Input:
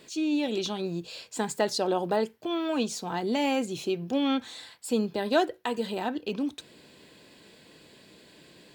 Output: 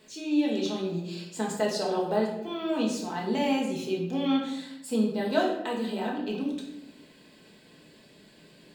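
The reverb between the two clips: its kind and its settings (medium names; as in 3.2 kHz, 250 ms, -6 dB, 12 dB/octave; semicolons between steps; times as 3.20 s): simulated room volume 280 m³, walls mixed, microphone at 1.5 m; trim -6 dB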